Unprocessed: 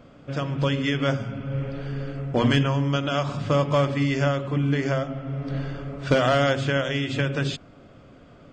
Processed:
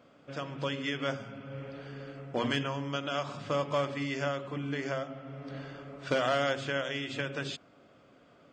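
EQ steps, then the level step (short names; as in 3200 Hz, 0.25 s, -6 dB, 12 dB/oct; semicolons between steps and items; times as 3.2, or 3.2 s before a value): HPF 360 Hz 6 dB/oct; -6.5 dB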